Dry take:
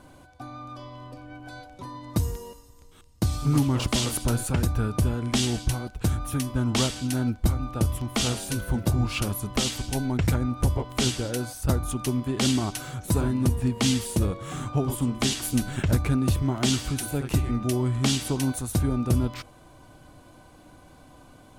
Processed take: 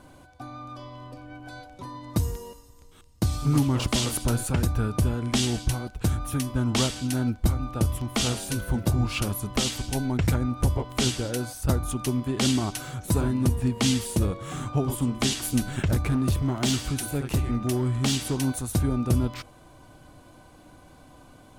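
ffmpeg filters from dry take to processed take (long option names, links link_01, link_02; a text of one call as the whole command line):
ffmpeg -i in.wav -filter_complex "[0:a]asettb=1/sr,asplit=3[link_01][link_02][link_03];[link_01]atrim=end=15.884[link_04];[link_02]atrim=start=15.88:end=18.45,asetpts=PTS-STARTPTS,afade=type=in:duration=0.004:curve=qsin,afade=type=out:start_time=2.566:duration=0.004:curve=qsin,asoftclip=type=hard:threshold=-18.5dB[link_05];[link_03]atrim=start=18.446[link_06];[link_04][link_05]acrossfade=duration=0.004:curve1=hsin:curve2=qsin[link_07];[link_07][link_06]acrossfade=duration=0.004:curve1=qsin:curve2=hsin" out.wav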